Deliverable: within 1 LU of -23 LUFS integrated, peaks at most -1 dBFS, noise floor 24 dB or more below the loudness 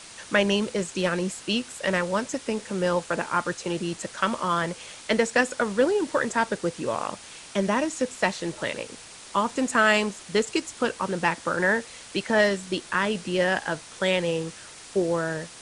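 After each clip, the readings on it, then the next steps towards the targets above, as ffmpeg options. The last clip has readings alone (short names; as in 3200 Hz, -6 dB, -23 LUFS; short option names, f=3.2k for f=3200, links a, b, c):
noise floor -45 dBFS; noise floor target -50 dBFS; loudness -26.0 LUFS; peak -6.5 dBFS; loudness target -23.0 LUFS
-> -af "afftdn=nr=6:nf=-45"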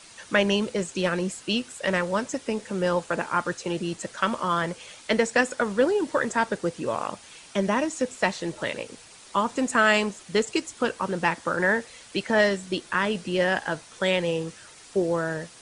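noise floor -49 dBFS; noise floor target -50 dBFS
-> -af "afftdn=nr=6:nf=-49"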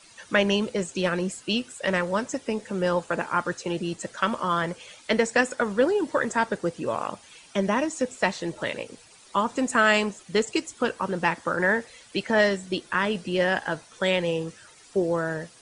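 noise floor -52 dBFS; loudness -26.0 LUFS; peak -6.5 dBFS; loudness target -23.0 LUFS
-> -af "volume=3dB"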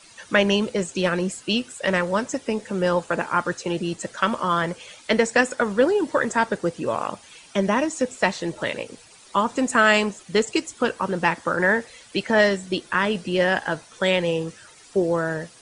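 loudness -23.0 LUFS; peak -3.5 dBFS; noise floor -49 dBFS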